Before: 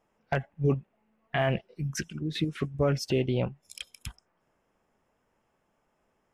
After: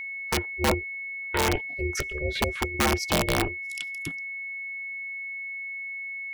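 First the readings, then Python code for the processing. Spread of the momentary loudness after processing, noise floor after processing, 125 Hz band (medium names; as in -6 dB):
8 LU, -36 dBFS, -3.0 dB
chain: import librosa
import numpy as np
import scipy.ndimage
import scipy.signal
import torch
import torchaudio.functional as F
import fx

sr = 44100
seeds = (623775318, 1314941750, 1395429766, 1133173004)

y = x * np.sin(2.0 * np.pi * 220.0 * np.arange(len(x)) / sr)
y = (np.mod(10.0 ** (20.0 / 20.0) * y + 1.0, 2.0) - 1.0) / 10.0 ** (20.0 / 20.0)
y = y + 10.0 ** (-38.0 / 20.0) * np.sin(2.0 * np.pi * 2200.0 * np.arange(len(y)) / sr)
y = F.gain(torch.from_numpy(y), 5.5).numpy()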